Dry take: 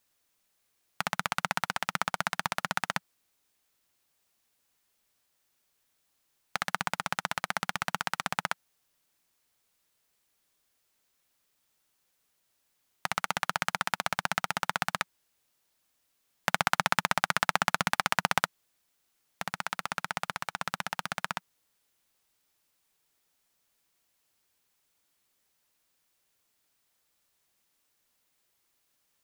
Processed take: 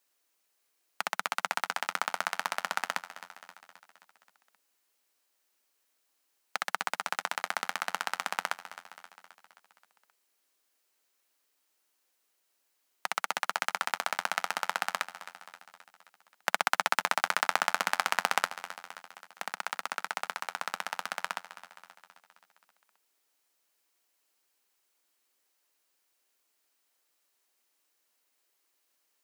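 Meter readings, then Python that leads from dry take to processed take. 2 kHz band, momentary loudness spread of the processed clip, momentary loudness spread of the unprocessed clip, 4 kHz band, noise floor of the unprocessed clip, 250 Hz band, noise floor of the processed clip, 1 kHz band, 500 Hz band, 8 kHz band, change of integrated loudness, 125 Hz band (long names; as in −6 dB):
−1.0 dB, 19 LU, 9 LU, −1.5 dB, −76 dBFS, −10.0 dB, −76 dBFS, −1.0 dB, −1.0 dB, −1.0 dB, −1.0 dB, −17.0 dB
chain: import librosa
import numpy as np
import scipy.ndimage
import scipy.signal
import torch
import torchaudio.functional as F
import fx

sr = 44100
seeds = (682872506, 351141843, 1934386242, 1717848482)

y = scipy.signal.sosfilt(scipy.signal.butter(4, 270.0, 'highpass', fs=sr, output='sos'), x)
y = fx.notch(y, sr, hz=3500.0, q=23.0)
y = fx.echo_feedback(y, sr, ms=264, feedback_pct=58, wet_db=-14.5)
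y = y * 10.0 ** (-1.0 / 20.0)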